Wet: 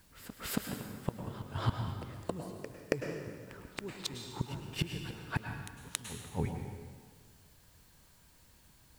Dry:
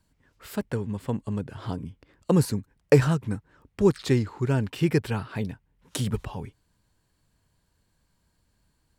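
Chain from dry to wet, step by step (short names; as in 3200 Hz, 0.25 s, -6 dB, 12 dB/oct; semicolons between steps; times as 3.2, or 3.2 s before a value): flipped gate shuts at -23 dBFS, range -29 dB; requantised 12-bit, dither triangular; pre-echo 0.276 s -14 dB; on a send at -4 dB: reverb RT60 1.6 s, pre-delay 93 ms; on the sum: gain +4.5 dB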